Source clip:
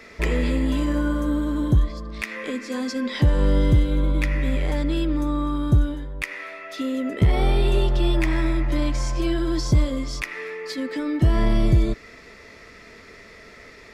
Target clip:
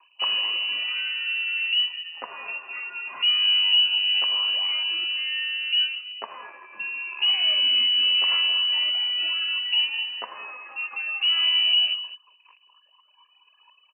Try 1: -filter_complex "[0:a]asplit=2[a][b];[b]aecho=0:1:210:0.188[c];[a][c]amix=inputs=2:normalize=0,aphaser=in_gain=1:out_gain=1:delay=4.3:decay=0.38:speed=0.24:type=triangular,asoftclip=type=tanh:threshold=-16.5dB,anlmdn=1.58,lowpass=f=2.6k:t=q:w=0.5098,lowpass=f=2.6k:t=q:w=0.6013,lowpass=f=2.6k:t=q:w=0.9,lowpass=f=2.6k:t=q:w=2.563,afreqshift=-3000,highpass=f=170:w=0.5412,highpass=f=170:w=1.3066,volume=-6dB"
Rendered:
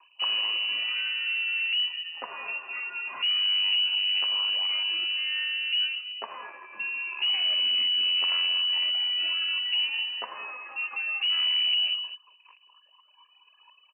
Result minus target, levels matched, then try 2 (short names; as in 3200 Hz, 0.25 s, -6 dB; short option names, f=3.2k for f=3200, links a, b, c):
soft clip: distortion +16 dB
-filter_complex "[0:a]asplit=2[a][b];[b]aecho=0:1:210:0.188[c];[a][c]amix=inputs=2:normalize=0,aphaser=in_gain=1:out_gain=1:delay=4.3:decay=0.38:speed=0.24:type=triangular,asoftclip=type=tanh:threshold=-4.5dB,anlmdn=1.58,lowpass=f=2.6k:t=q:w=0.5098,lowpass=f=2.6k:t=q:w=0.6013,lowpass=f=2.6k:t=q:w=0.9,lowpass=f=2.6k:t=q:w=2.563,afreqshift=-3000,highpass=f=170:w=0.5412,highpass=f=170:w=1.3066,volume=-6dB"